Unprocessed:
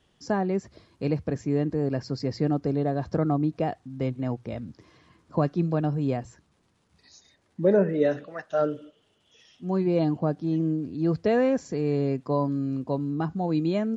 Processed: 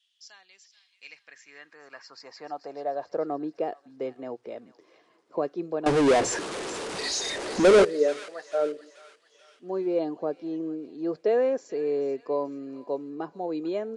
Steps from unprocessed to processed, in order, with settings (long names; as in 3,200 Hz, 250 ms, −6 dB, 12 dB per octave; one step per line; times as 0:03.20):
high-pass filter sweep 3,300 Hz → 420 Hz, 0:00.66–0:03.39
0:05.86–0:07.85: power curve on the samples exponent 0.35
on a send: delay with a high-pass on its return 436 ms, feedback 45%, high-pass 1,500 Hz, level −13 dB
on the sum: downsampling to 22,050 Hz
level −6 dB